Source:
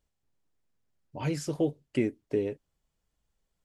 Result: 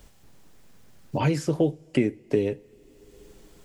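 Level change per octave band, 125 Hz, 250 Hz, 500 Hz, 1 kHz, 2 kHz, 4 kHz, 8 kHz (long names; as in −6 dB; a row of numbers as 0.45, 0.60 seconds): +8.0, +5.5, +5.5, +10.0, +6.5, +6.0, +2.0 decibels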